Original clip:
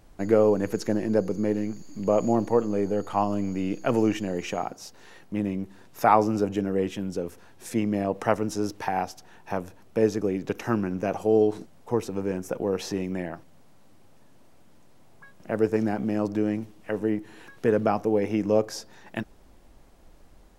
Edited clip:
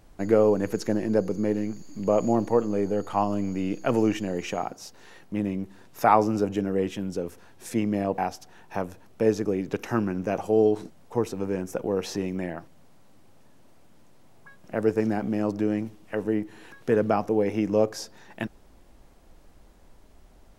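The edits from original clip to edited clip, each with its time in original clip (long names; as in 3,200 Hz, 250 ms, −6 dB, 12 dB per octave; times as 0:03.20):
0:08.18–0:08.94: remove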